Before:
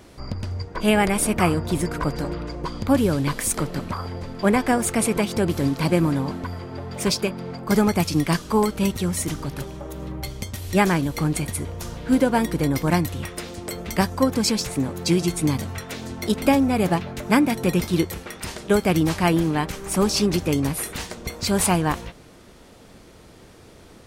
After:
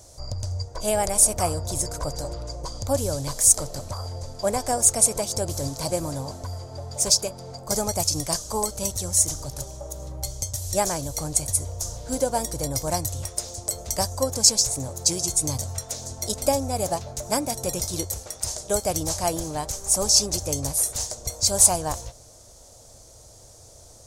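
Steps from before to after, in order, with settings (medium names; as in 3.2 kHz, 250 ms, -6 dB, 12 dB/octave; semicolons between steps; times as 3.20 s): FFT filter 120 Hz 0 dB, 170 Hz -15 dB, 390 Hz -11 dB, 600 Hz +2 dB, 1.2 kHz -10 dB, 1.9 kHz -14 dB, 2.8 kHz -13 dB, 6.5 kHz +13 dB, 14 kHz +2 dB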